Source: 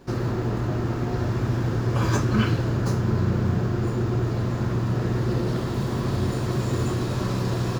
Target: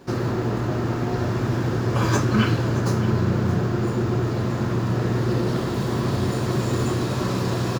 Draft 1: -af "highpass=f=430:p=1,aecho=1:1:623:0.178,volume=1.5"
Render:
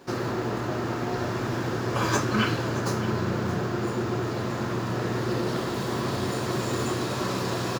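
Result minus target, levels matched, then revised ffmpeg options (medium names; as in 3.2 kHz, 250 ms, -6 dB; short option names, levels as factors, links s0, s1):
125 Hz band -3.5 dB
-af "highpass=f=120:p=1,aecho=1:1:623:0.178,volume=1.5"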